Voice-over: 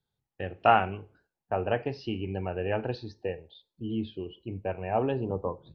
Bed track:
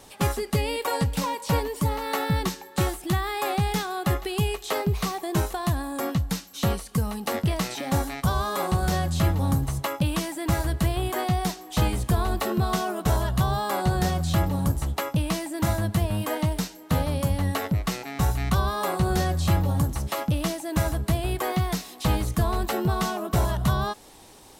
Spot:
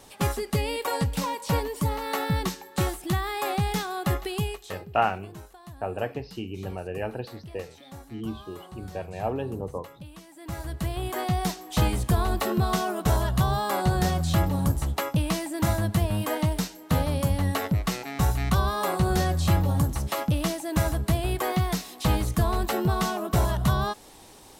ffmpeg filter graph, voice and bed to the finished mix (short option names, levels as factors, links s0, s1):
-filter_complex "[0:a]adelay=4300,volume=0.794[s0];[1:a]volume=7.94,afade=t=out:st=4.28:d=0.55:silence=0.125893,afade=t=in:st=10.27:d=1.29:silence=0.105925[s1];[s0][s1]amix=inputs=2:normalize=0"